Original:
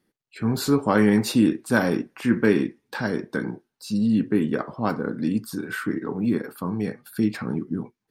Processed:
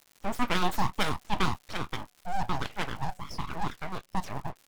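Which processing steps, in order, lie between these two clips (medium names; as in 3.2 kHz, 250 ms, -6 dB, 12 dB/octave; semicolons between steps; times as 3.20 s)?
de-hum 105.8 Hz, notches 2; spectral noise reduction 14 dB; level-controlled noise filter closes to 740 Hz, open at -16 dBFS; full-wave rectifier; crackle 110 per s -34 dBFS; speed mistake 45 rpm record played at 78 rpm; trim -4.5 dB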